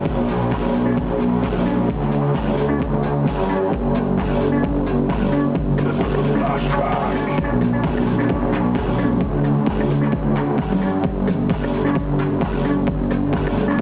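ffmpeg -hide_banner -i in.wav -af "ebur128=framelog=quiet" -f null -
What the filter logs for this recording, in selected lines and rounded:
Integrated loudness:
  I:         -19.6 LUFS
  Threshold: -29.6 LUFS
Loudness range:
  LRA:         0.6 LU
  Threshold: -39.5 LUFS
  LRA low:   -19.8 LUFS
  LRA high:  -19.2 LUFS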